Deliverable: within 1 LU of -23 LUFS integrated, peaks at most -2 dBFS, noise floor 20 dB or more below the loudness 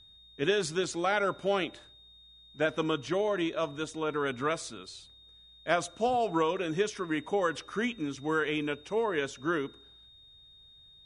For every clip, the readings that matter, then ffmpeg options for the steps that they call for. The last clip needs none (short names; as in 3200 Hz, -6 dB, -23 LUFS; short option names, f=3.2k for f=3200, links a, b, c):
steady tone 3700 Hz; tone level -54 dBFS; loudness -31.0 LUFS; peak -12.0 dBFS; loudness target -23.0 LUFS
-> -af "bandreject=f=3.7k:w=30"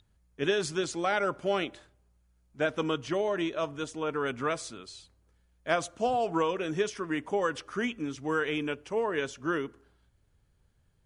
steady tone none; loudness -31.0 LUFS; peak -12.0 dBFS; loudness target -23.0 LUFS
-> -af "volume=8dB"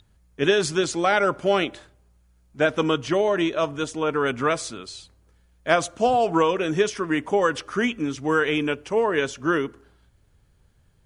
loudness -23.0 LUFS; peak -4.0 dBFS; noise floor -61 dBFS